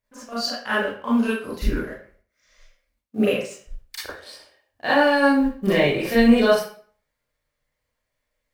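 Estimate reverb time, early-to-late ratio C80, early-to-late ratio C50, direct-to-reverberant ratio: 0.50 s, 6.0 dB, 0.5 dB, −9.5 dB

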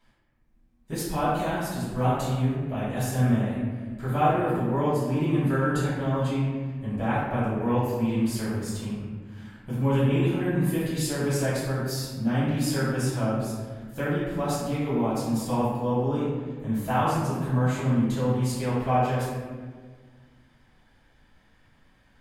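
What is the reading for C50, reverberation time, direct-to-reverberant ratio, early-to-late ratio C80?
−1.5 dB, 1.6 s, −11.5 dB, 1.0 dB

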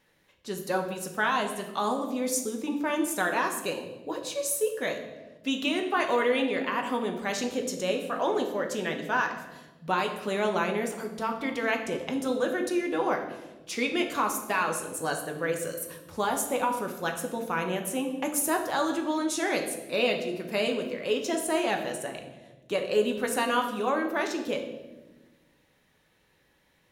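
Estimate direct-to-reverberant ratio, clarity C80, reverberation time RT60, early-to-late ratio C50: 3.0 dB, 10.0 dB, 1.2 s, 7.5 dB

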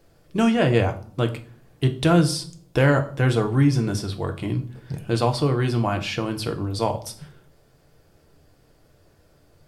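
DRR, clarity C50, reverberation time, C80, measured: 5.0 dB, 14.5 dB, 0.45 s, 19.0 dB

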